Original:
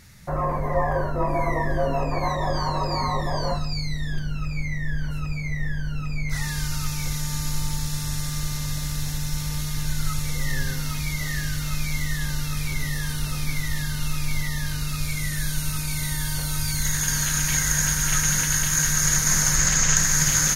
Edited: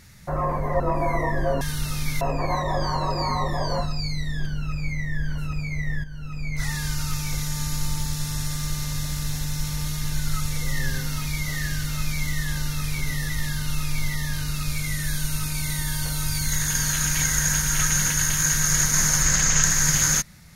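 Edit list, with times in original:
0.80–1.13 s: delete
5.77–6.36 s: fade in, from -12 dB
13.02–13.62 s: move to 1.94 s

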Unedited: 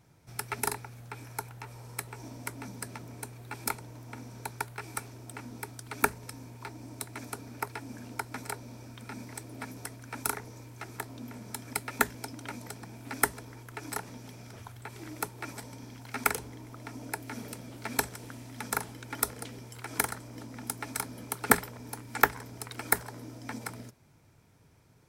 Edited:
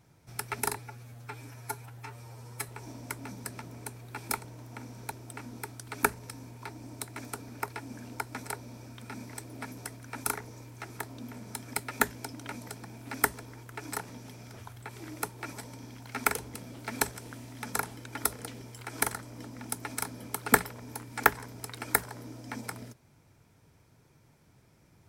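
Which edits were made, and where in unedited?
0.76–2.03 s: stretch 1.5×
4.48–5.11 s: delete
16.54–17.52 s: delete

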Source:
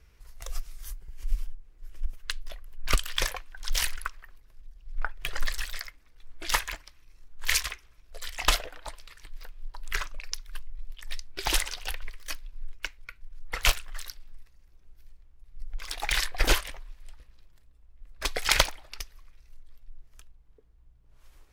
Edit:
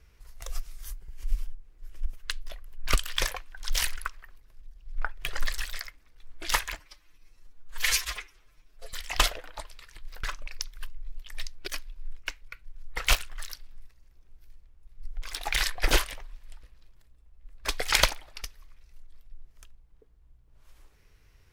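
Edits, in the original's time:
6.79–8.22 s: stretch 1.5×
9.52–9.96 s: delete
11.40–12.24 s: delete

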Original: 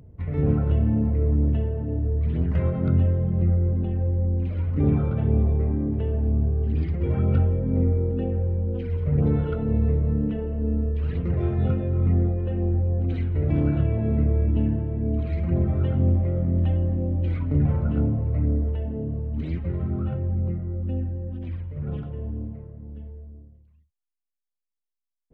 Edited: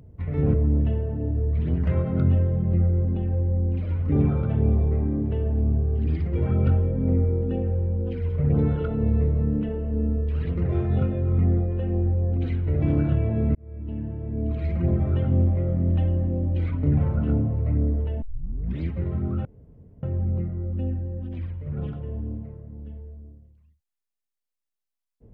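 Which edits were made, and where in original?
0.54–1.22 s: delete
14.23–15.37 s: fade in
18.90 s: tape start 0.59 s
20.13 s: insert room tone 0.58 s

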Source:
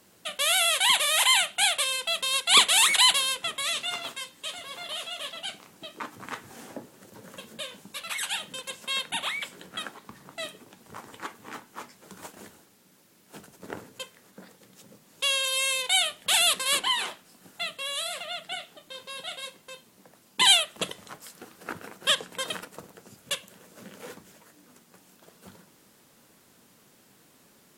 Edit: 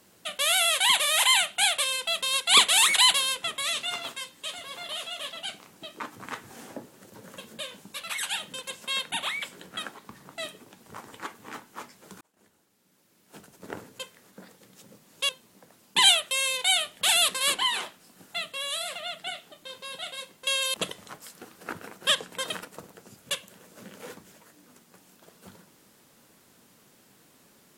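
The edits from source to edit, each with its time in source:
12.21–13.76 s: fade in
15.29–15.56 s: swap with 19.72–20.74 s

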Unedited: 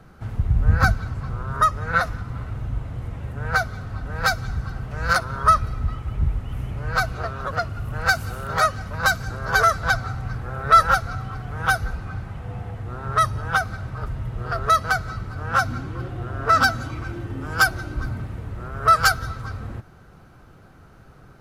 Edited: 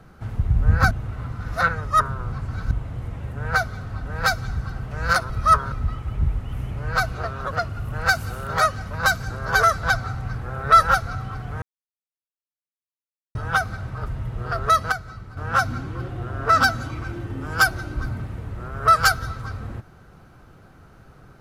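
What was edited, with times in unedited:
0.91–2.71 s: reverse
5.30–5.72 s: reverse
11.62–13.35 s: mute
14.92–15.37 s: gain -7.5 dB

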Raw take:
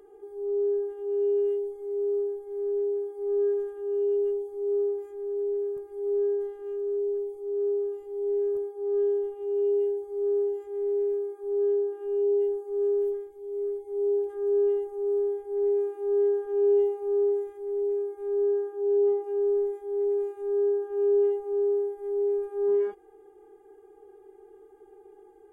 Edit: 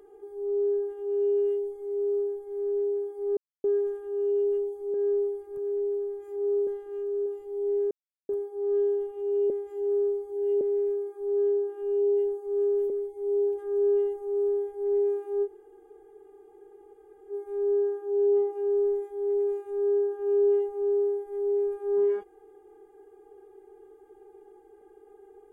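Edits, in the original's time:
3.37 s: insert silence 0.27 s
4.67–6.40 s: reverse
6.99–7.87 s: delete
8.52 s: insert silence 0.38 s
9.73–10.84 s: reverse
13.13–13.61 s: delete
16.16–18.03 s: room tone, crossfade 0.06 s

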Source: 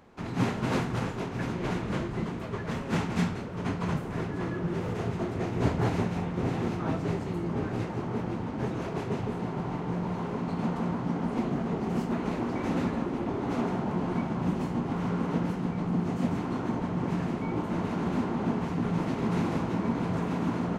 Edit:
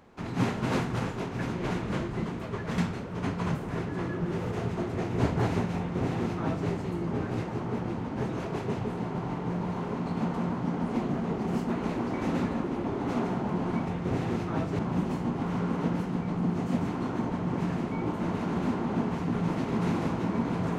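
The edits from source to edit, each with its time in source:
2.78–3.20 s: delete
6.19–7.11 s: copy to 14.29 s

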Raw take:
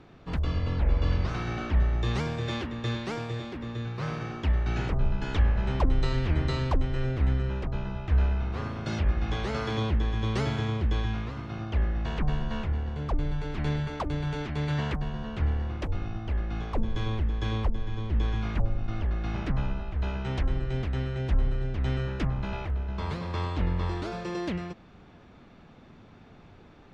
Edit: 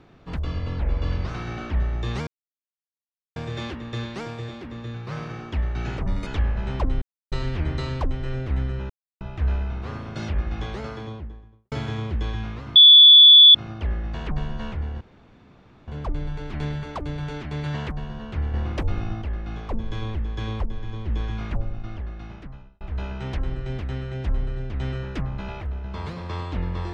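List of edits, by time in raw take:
2.27 s: insert silence 1.09 s
4.97–5.27 s: speed 145%
6.02 s: insert silence 0.30 s
7.60–7.91 s: mute
9.16–10.42 s: studio fade out
11.46 s: add tone 3.45 kHz -6 dBFS 0.79 s
12.92 s: insert room tone 0.87 s
15.58–16.26 s: gain +5.5 dB
18.60–19.85 s: fade out

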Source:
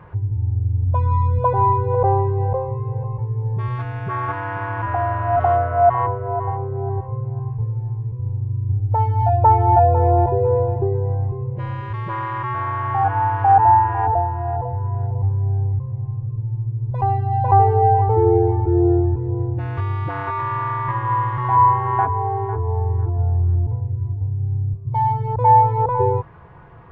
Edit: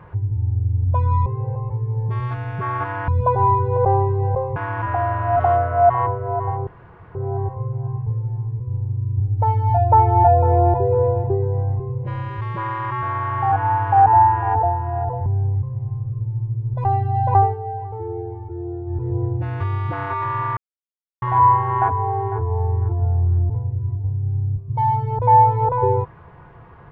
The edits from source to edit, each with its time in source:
1.26–2.74 s: move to 4.56 s
6.67 s: insert room tone 0.48 s
14.78–15.43 s: delete
17.52–19.24 s: dip -13.5 dB, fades 0.22 s
20.74–21.39 s: mute

